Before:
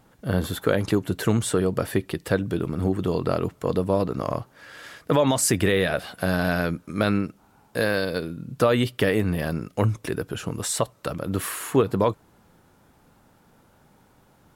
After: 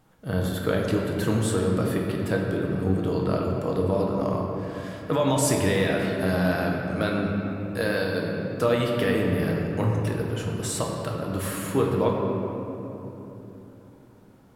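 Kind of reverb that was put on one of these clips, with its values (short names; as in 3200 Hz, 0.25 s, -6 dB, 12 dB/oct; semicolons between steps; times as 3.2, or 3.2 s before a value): shoebox room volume 190 m³, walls hard, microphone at 0.54 m; gain -5 dB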